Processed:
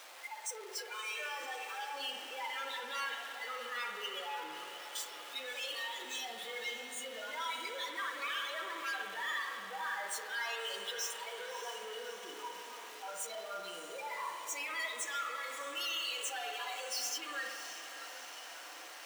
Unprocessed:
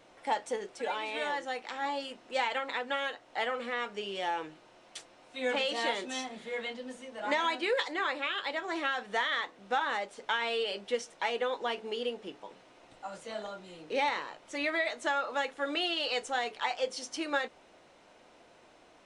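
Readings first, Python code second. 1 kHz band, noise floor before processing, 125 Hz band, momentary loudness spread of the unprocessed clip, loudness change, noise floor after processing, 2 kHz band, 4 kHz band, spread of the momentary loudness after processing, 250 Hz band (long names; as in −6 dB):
−7.5 dB, −60 dBFS, can't be measured, 11 LU, −6.0 dB, −49 dBFS, −5.0 dB, −3.0 dB, 8 LU, −16.5 dB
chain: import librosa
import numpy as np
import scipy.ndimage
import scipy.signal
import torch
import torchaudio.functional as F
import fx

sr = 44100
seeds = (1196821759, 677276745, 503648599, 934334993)

y = np.sign(x) * np.sqrt(np.mean(np.square(x)))
y = scipy.signal.sosfilt(scipy.signal.butter(2, 860.0, 'highpass', fs=sr, output='sos'), y)
y = fx.noise_reduce_blind(y, sr, reduce_db=16)
y = fx.echo_diffused(y, sr, ms=621, feedback_pct=68, wet_db=-11.0)
y = fx.rev_spring(y, sr, rt60_s=2.0, pass_ms=(57,), chirp_ms=45, drr_db=3.5)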